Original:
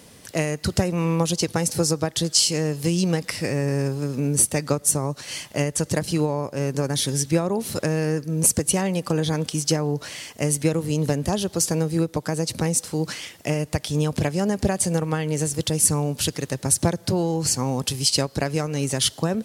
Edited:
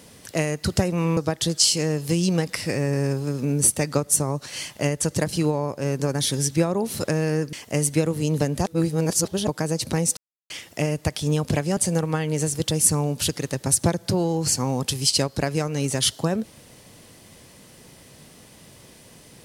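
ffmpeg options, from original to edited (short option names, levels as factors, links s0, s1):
-filter_complex "[0:a]asplit=8[s0][s1][s2][s3][s4][s5][s6][s7];[s0]atrim=end=1.172[s8];[s1]atrim=start=1.918:end=8.282[s9];[s2]atrim=start=10.208:end=11.342[s10];[s3]atrim=start=11.338:end=12.152,asetpts=PTS-STARTPTS,areverse[s11];[s4]atrim=start=12.148:end=12.85,asetpts=PTS-STARTPTS,afade=t=out:st=0.698:d=0.004:c=hsin[s12];[s5]atrim=start=12.85:end=13.18,asetpts=PTS-STARTPTS,volume=0[s13];[s6]atrim=start=13.18:end=14.452,asetpts=PTS-STARTPTS,afade=t=in:d=0.004:c=hsin[s14];[s7]atrim=start=14.758[s15];[s8][s9]acrossfade=d=0.004:c1=hsin:c2=hsin[s16];[s16][s10]acrossfade=d=0.004:c1=hsin:c2=hsin[s17];[s17][s11]acrossfade=d=0.004:c1=hsin:c2=hsin[s18];[s12][s13][s14]concat=n=3:v=0:a=1[s19];[s18][s19]acrossfade=d=0.004:c1=hsin:c2=hsin[s20];[s20][s15]acrossfade=d=0.004:c1=hsin:c2=hsin"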